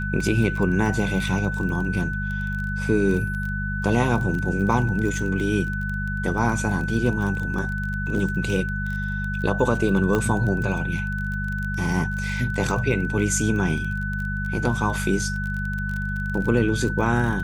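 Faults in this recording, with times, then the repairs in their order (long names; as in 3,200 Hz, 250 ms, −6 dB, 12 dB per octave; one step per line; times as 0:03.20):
surface crackle 24 per second −28 dBFS
mains hum 50 Hz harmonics 4 −28 dBFS
whistle 1,500 Hz −29 dBFS
0:10.15: click −11 dBFS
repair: click removal
notch filter 1,500 Hz, Q 30
hum removal 50 Hz, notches 4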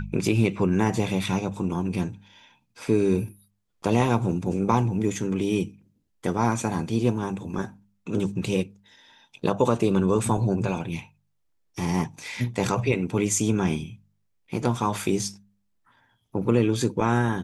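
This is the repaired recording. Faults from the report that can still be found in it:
none of them is left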